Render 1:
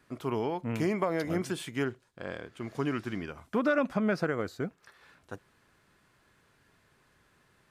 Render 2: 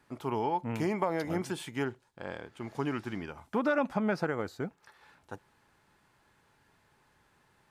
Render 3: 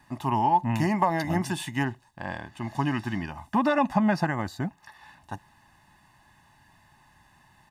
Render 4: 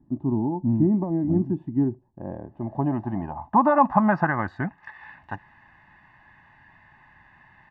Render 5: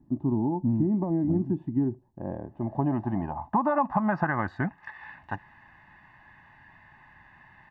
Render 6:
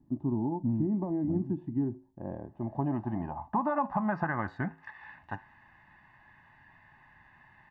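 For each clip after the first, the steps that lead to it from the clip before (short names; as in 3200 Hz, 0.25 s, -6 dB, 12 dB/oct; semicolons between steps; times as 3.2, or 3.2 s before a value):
bell 860 Hz +10.5 dB 0.23 oct; gain -2 dB
comb 1.1 ms, depth 92%; gain +5 dB
low-pass sweep 310 Hz -> 2000 Hz, 1.67–4.88; gain +1.5 dB
compressor 6:1, threshold -21 dBFS, peak gain reduction 9.5 dB
flange 0.29 Hz, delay 7.3 ms, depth 2.6 ms, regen -84%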